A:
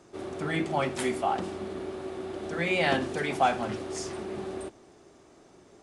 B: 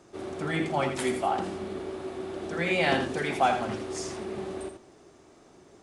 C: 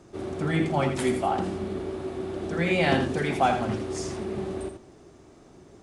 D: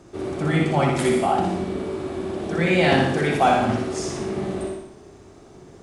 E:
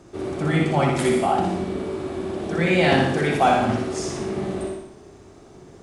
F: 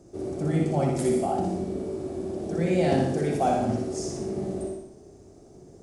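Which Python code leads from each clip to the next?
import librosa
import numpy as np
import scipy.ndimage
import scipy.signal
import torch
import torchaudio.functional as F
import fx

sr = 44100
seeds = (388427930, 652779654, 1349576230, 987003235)

y1 = x + 10.0 ** (-7.5 / 20.0) * np.pad(x, (int(81 * sr / 1000.0), 0))[:len(x)]
y2 = fx.low_shelf(y1, sr, hz=250.0, db=10.0)
y3 = fx.echo_feedback(y2, sr, ms=60, feedback_pct=53, wet_db=-4)
y3 = y3 * librosa.db_to_amplitude(3.5)
y4 = y3
y5 = fx.band_shelf(y4, sr, hz=1900.0, db=-11.5, octaves=2.4)
y5 = y5 * librosa.db_to_amplitude(-3.5)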